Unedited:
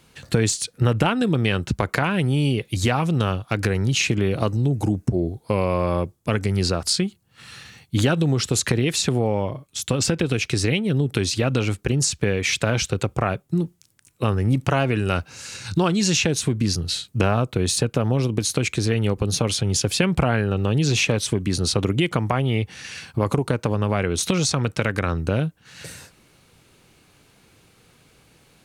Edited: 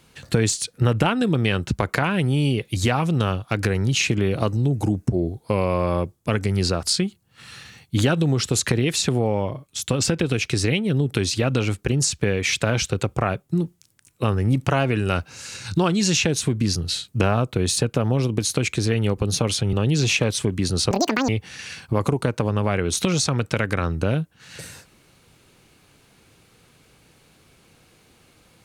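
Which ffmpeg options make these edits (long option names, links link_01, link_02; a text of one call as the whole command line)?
ffmpeg -i in.wav -filter_complex "[0:a]asplit=4[link_01][link_02][link_03][link_04];[link_01]atrim=end=19.732[link_05];[link_02]atrim=start=20.608:end=21.794[link_06];[link_03]atrim=start=21.79:end=22.54,asetpts=PTS-STARTPTS,asetrate=88200,aresample=44100[link_07];[link_04]atrim=start=22.536[link_08];[link_05][link_06]acrossfade=duration=0.004:curve1=hsin:curve2=hsin[link_09];[link_09][link_07]acrossfade=duration=0.004:curve1=hsin:curve2=hsin[link_10];[link_10][link_08]acrossfade=duration=0.004:curve1=hsin:curve2=hsin" out.wav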